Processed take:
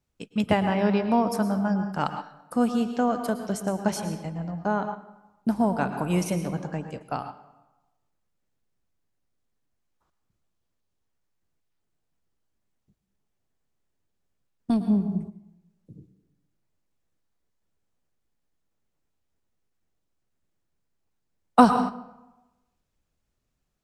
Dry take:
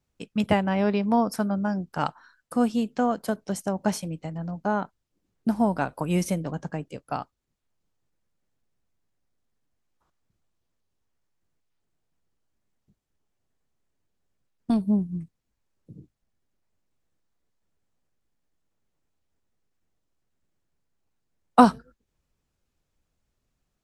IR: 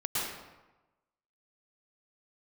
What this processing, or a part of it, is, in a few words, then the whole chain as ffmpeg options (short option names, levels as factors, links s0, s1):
keyed gated reverb: -filter_complex "[0:a]asplit=3[s0][s1][s2];[1:a]atrim=start_sample=2205[s3];[s1][s3]afir=irnorm=-1:irlink=0[s4];[s2]apad=whole_len=1050952[s5];[s4][s5]sidechaingate=range=0.398:threshold=0.00891:ratio=16:detection=peak,volume=0.251[s6];[s0][s6]amix=inputs=2:normalize=0,volume=0.794"